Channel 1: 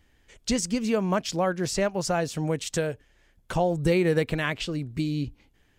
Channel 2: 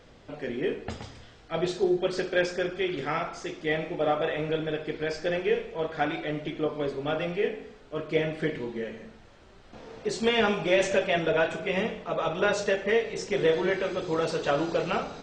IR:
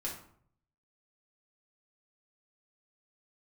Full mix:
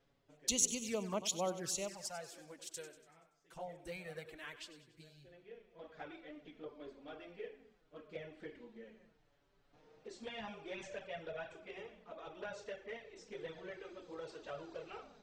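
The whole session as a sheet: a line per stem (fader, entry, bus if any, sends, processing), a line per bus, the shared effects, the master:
1.56 s -9 dB -> 2.10 s -18.5 dB, 0.00 s, no send, echo send -13 dB, tilt EQ +2.5 dB/octave; three bands expanded up and down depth 70%
-18.0 dB, 0.00 s, no send, no echo send, auto duck -16 dB, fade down 1.30 s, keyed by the first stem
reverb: none
echo: feedback delay 95 ms, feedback 51%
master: touch-sensitive flanger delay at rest 7.5 ms, full sweep at -32.5 dBFS

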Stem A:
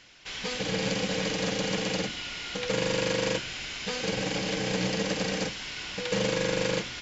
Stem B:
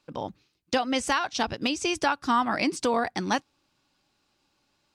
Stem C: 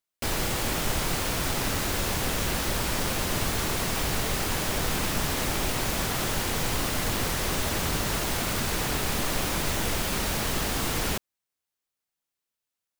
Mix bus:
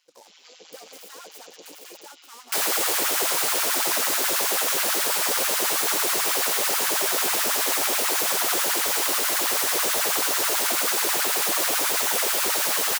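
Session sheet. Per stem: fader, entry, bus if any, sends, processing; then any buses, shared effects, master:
-16.5 dB, 0.00 s, no send, peaking EQ 1.7 kHz -8 dB 0.84 oct; AM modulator 160 Hz, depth 50%
-16.5 dB, 0.00 s, no send, saturation -30.5 dBFS, distortion -6 dB; delay time shaken by noise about 4.9 kHz, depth 0.075 ms
0.0 dB, 2.30 s, no send, none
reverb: none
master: treble shelf 4.2 kHz +10.5 dB; LFO high-pass sine 9.2 Hz 360–1500 Hz

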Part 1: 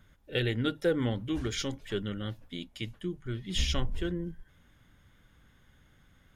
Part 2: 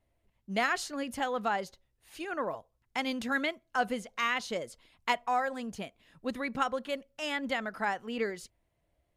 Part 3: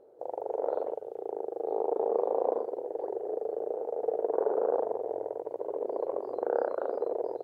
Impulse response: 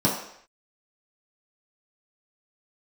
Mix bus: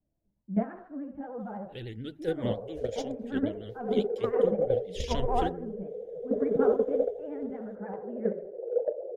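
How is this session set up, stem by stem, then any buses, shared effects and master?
+2.0 dB, 1.40 s, no send, rotary cabinet horn 0.7 Hz
-6.0 dB, 0.00 s, send -8 dB, de-esser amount 90%; low-pass 1.4 kHz 24 dB/octave
-7.0 dB, 2.20 s, send -5 dB, spectral contrast enhancement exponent 2.7; hum notches 50/100/150/200/250/300/350/400/450 Hz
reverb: on, pre-delay 3 ms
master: vibrato 13 Hz 90 cents; gate -22 dBFS, range -10 dB; peaking EQ 1.1 kHz -10 dB 0.93 oct

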